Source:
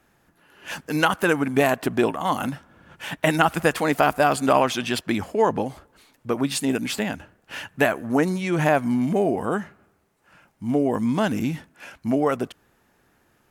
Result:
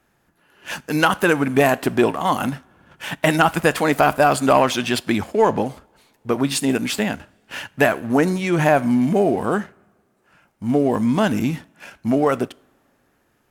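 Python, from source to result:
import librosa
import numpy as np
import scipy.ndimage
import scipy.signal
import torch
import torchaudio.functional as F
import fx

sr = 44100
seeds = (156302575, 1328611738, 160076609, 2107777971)

y = fx.rev_double_slope(x, sr, seeds[0], early_s=0.49, late_s=2.5, knee_db=-19, drr_db=17.0)
y = fx.leveller(y, sr, passes=1)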